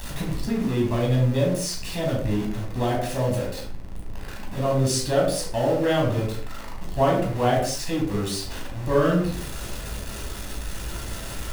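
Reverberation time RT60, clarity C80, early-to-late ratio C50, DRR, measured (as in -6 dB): no single decay rate, 8.5 dB, 4.0 dB, -2.5 dB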